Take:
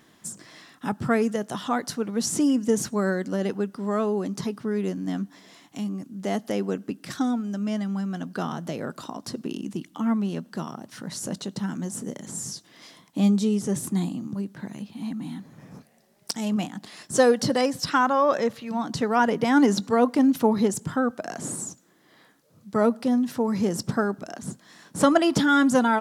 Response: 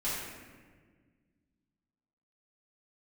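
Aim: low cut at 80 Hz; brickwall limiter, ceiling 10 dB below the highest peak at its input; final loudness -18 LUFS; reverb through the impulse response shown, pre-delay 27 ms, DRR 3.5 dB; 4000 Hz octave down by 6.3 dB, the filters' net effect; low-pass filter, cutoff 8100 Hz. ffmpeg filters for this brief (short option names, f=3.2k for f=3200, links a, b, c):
-filter_complex "[0:a]highpass=80,lowpass=8.1k,equalizer=f=4k:t=o:g=-8.5,alimiter=limit=-17dB:level=0:latency=1,asplit=2[a][b];[1:a]atrim=start_sample=2205,adelay=27[c];[b][c]afir=irnorm=-1:irlink=0,volume=-9.5dB[d];[a][d]amix=inputs=2:normalize=0,volume=8.5dB"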